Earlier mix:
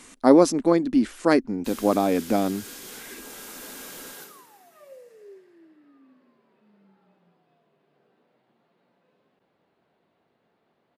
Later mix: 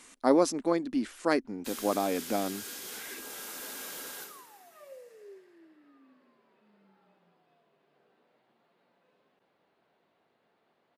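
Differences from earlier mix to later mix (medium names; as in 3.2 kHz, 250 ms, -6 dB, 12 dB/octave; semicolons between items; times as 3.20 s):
speech -5.0 dB; master: add bass shelf 310 Hz -8.5 dB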